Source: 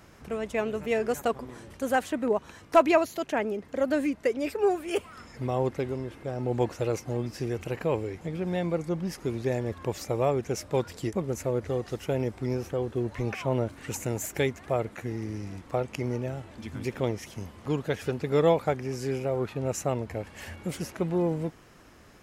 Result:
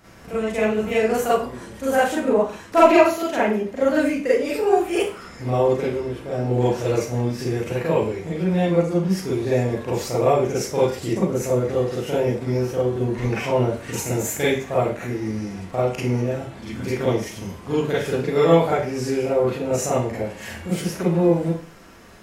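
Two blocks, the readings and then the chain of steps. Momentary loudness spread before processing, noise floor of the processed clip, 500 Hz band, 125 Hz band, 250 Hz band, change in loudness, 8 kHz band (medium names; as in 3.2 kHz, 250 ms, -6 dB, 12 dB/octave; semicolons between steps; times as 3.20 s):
9 LU, -40 dBFS, +8.0 dB, +7.0 dB, +8.0 dB, +8.0 dB, +8.0 dB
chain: Schroeder reverb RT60 0.4 s, combs from 33 ms, DRR -8.5 dB; trim -1 dB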